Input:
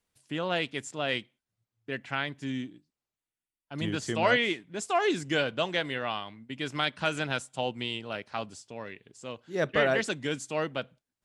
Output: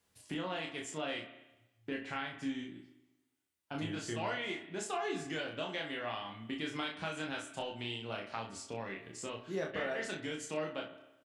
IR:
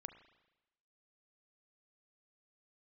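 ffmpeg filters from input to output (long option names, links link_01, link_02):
-filter_complex "[0:a]highpass=58,acompressor=threshold=-44dB:ratio=4,asplit=2[link_01][link_02];[link_02]adelay=26,volume=-5dB[link_03];[link_01][link_03]amix=inputs=2:normalize=0,aecho=1:1:11|36:0.422|0.562[link_04];[1:a]atrim=start_sample=2205[link_05];[link_04][link_05]afir=irnorm=-1:irlink=0,volume=9dB"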